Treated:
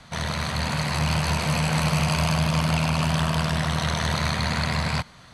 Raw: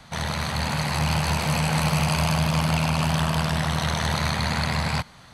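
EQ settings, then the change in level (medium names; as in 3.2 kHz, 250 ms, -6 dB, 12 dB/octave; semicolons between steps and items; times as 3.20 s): low-pass 11 kHz 12 dB/octave; band-stop 830 Hz, Q 12; 0.0 dB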